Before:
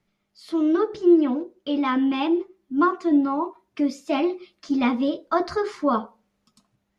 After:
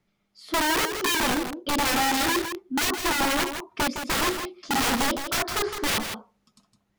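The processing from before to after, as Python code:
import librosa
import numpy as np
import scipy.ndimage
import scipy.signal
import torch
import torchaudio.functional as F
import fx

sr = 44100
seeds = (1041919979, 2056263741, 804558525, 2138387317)

y = (np.mod(10.0 ** (19.5 / 20.0) * x + 1.0, 2.0) - 1.0) / 10.0 ** (19.5 / 20.0)
y = y + 10.0 ** (-8.0 / 20.0) * np.pad(y, (int(161 * sr / 1000.0), 0))[:len(y)]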